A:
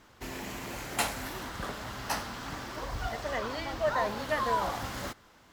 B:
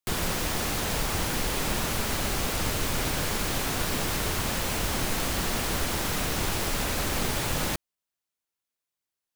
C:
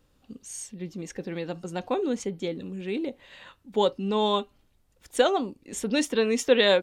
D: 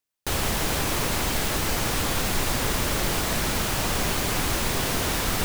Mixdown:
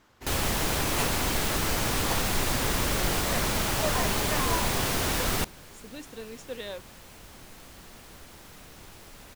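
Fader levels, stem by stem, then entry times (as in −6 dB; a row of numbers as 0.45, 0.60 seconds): −3.5, −20.0, −18.0, −2.0 decibels; 0.00, 2.40, 0.00, 0.00 seconds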